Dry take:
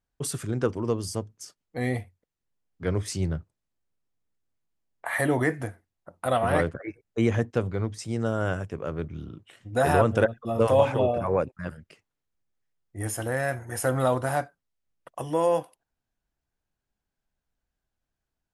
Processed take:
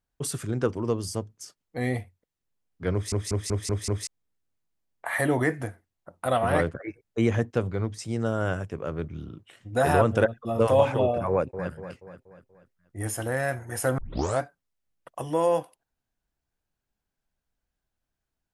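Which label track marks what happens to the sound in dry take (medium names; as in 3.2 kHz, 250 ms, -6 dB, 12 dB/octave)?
2.930000	2.930000	stutter in place 0.19 s, 6 plays
11.290000	11.710000	echo throw 240 ms, feedback 50%, level -10 dB
13.980000	13.980000	tape start 0.43 s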